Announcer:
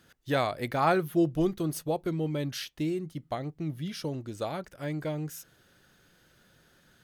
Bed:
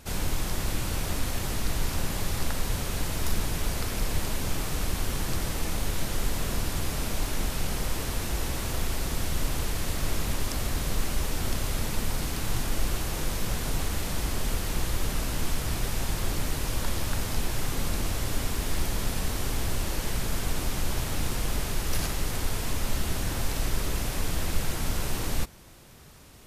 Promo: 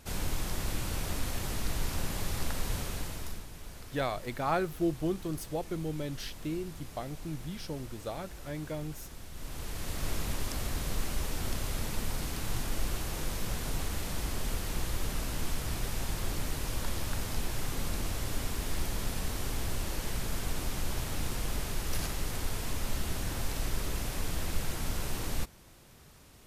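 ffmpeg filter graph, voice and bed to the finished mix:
-filter_complex "[0:a]adelay=3650,volume=-5dB[a];[1:a]volume=7.5dB,afade=t=out:st=2.78:d=0.67:silence=0.237137,afade=t=in:st=9.32:d=0.76:silence=0.251189[b];[a][b]amix=inputs=2:normalize=0"

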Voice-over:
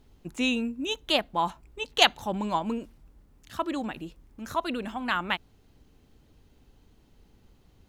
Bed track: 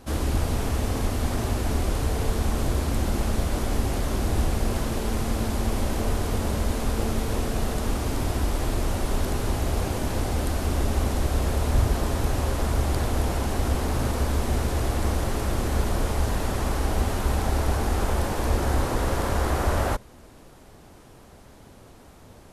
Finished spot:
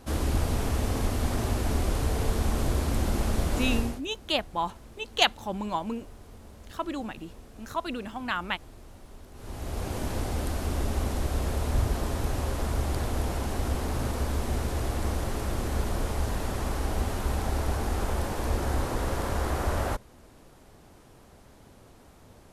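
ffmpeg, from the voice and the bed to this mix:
-filter_complex "[0:a]adelay=3200,volume=-2.5dB[a];[1:a]volume=16.5dB,afade=t=out:st=3.75:d=0.26:silence=0.0891251,afade=t=in:st=9.33:d=0.67:silence=0.11885[b];[a][b]amix=inputs=2:normalize=0"

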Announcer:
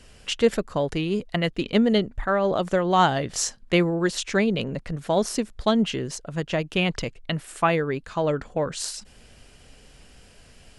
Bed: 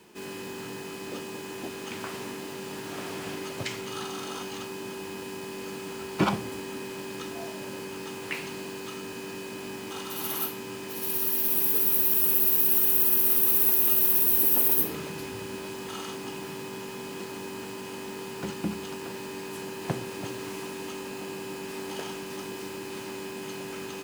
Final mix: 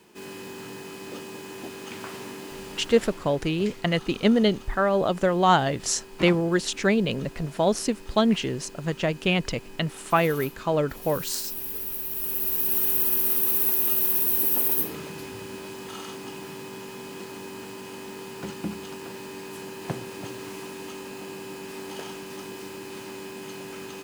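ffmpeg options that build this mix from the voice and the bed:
-filter_complex "[0:a]adelay=2500,volume=0dB[a];[1:a]volume=7dB,afade=t=out:st=2.57:d=0.67:silence=0.398107,afade=t=in:st=12.09:d=0.75:silence=0.398107[b];[a][b]amix=inputs=2:normalize=0"

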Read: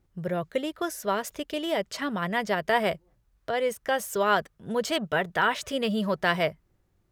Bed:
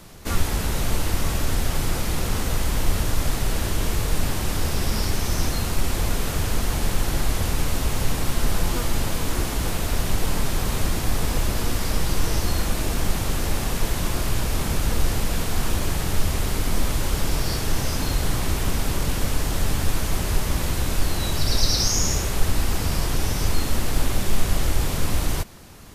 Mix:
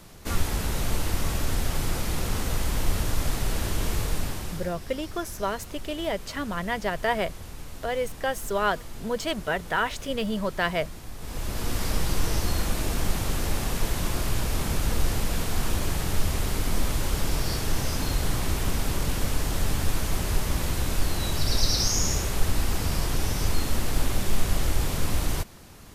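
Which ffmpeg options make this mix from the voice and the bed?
-filter_complex "[0:a]adelay=4350,volume=-1.5dB[a];[1:a]volume=10.5dB,afade=t=out:st=4:d=0.75:silence=0.211349,afade=t=in:st=11.18:d=0.64:silence=0.199526[b];[a][b]amix=inputs=2:normalize=0"

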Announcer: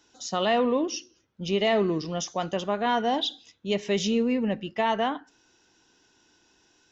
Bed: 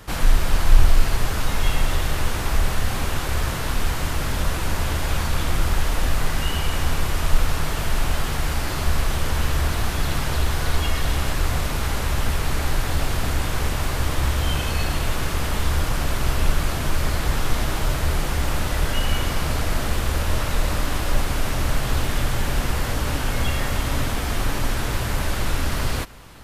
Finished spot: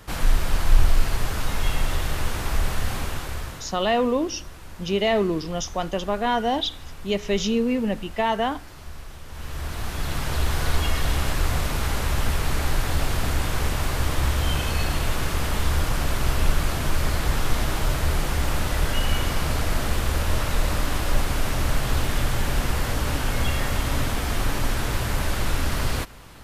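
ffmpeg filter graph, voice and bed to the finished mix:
-filter_complex "[0:a]adelay=3400,volume=2dB[a];[1:a]volume=14dB,afade=t=out:st=2.91:d=0.85:silence=0.177828,afade=t=in:st=9.27:d=1.31:silence=0.141254[b];[a][b]amix=inputs=2:normalize=0"

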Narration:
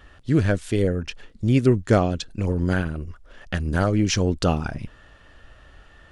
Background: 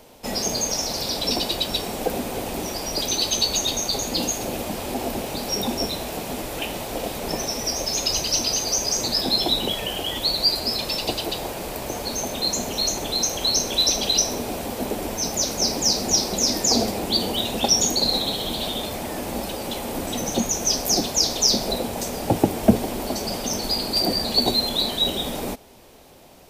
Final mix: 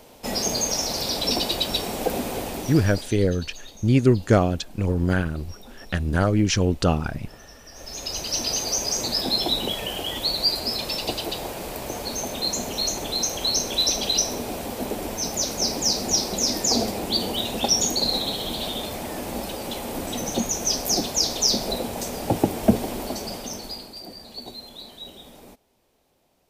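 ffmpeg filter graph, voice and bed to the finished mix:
-filter_complex "[0:a]adelay=2400,volume=0.5dB[a];[1:a]volume=19.5dB,afade=t=out:st=2.31:d=0.85:silence=0.0841395,afade=t=in:st=7.71:d=0.83:silence=0.105925,afade=t=out:st=22.94:d=1.03:silence=0.158489[b];[a][b]amix=inputs=2:normalize=0"

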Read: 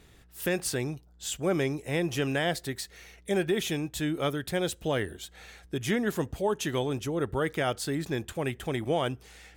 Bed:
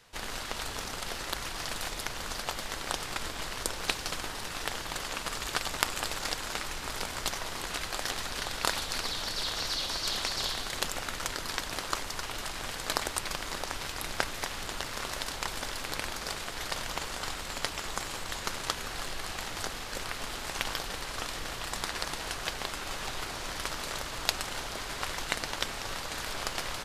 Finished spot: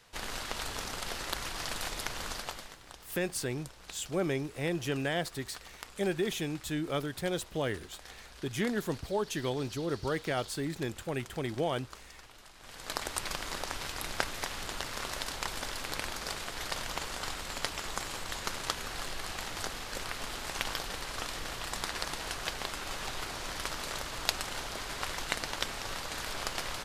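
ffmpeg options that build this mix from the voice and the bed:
-filter_complex "[0:a]adelay=2700,volume=-4dB[a];[1:a]volume=15dB,afade=t=out:st=2.26:d=0.52:silence=0.149624,afade=t=in:st=12.59:d=0.64:silence=0.158489[b];[a][b]amix=inputs=2:normalize=0"

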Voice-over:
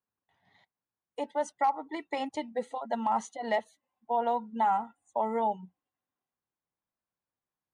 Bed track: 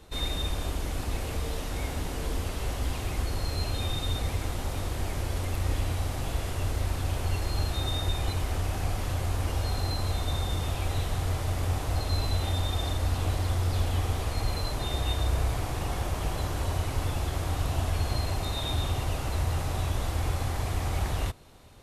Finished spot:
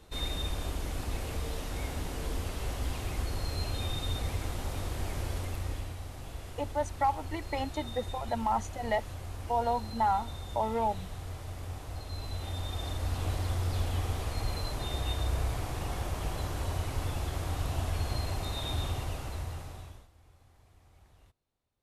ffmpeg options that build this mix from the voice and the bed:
-filter_complex "[0:a]adelay=5400,volume=-1dB[a];[1:a]volume=4dB,afade=t=out:st=5.28:d=0.68:silence=0.398107,afade=t=in:st=12.11:d=1.21:silence=0.421697,afade=t=out:st=18.84:d=1.24:silence=0.0421697[b];[a][b]amix=inputs=2:normalize=0"

